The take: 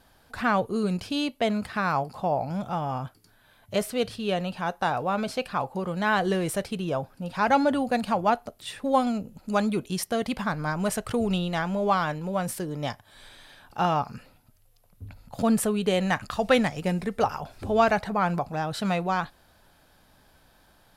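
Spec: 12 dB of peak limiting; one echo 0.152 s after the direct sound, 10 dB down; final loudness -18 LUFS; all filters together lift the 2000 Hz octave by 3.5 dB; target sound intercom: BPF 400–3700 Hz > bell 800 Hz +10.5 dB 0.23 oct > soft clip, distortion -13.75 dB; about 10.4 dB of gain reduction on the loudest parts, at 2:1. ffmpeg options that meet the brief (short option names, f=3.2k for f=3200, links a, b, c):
-af "equalizer=f=2k:t=o:g=5,acompressor=threshold=-34dB:ratio=2,alimiter=level_in=4.5dB:limit=-24dB:level=0:latency=1,volume=-4.5dB,highpass=400,lowpass=3.7k,equalizer=f=800:t=o:w=0.23:g=10.5,aecho=1:1:152:0.316,asoftclip=threshold=-31dB,volume=22dB"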